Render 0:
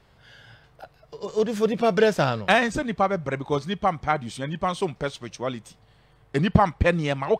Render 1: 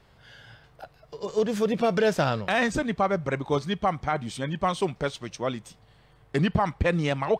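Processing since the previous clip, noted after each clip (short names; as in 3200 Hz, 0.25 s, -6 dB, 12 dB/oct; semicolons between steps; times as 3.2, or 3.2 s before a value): limiter -13.5 dBFS, peak gain reduction 8 dB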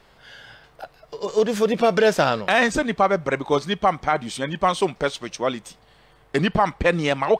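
bell 98 Hz -11.5 dB 1.7 oct; gain +6.5 dB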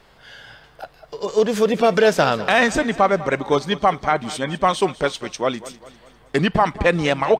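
feedback echo 0.2 s, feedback 49%, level -17 dB; gain +2 dB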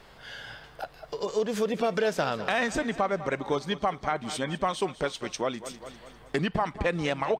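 compressor 2:1, threshold -32 dBFS, peak gain reduction 12 dB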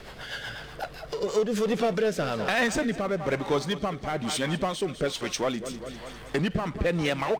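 power-law curve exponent 0.7; rotary speaker horn 8 Hz, later 1.1 Hz, at 0.79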